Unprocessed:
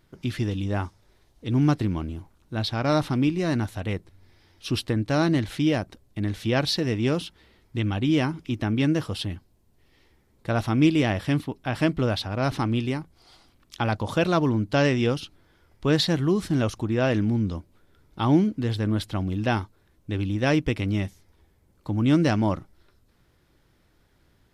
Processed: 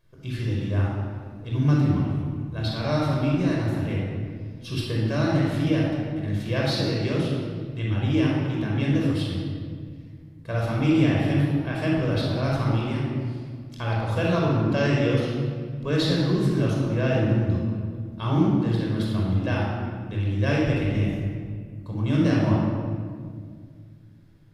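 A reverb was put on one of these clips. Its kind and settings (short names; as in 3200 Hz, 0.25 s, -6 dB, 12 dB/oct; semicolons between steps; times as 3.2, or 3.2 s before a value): shoebox room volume 3200 m³, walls mixed, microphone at 5.4 m; gain -9 dB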